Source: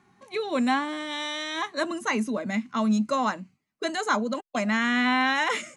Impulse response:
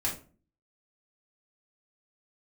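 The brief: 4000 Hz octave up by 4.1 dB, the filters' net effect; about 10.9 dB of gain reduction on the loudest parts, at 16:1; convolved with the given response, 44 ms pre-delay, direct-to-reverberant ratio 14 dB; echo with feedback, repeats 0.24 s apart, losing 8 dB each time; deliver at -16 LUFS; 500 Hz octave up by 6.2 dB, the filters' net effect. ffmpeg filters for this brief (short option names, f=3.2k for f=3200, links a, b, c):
-filter_complex "[0:a]equalizer=f=500:t=o:g=7.5,equalizer=f=4k:t=o:g=5,acompressor=threshold=-27dB:ratio=16,aecho=1:1:240|480|720|960|1200:0.398|0.159|0.0637|0.0255|0.0102,asplit=2[a][b];[1:a]atrim=start_sample=2205,adelay=44[c];[b][c]afir=irnorm=-1:irlink=0,volume=-19.5dB[d];[a][d]amix=inputs=2:normalize=0,volume=15dB"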